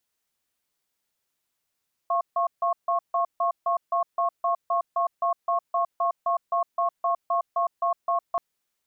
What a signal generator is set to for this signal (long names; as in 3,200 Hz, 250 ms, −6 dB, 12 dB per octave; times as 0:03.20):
tone pair in a cadence 689 Hz, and 1,090 Hz, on 0.11 s, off 0.15 s, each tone −23.5 dBFS 6.28 s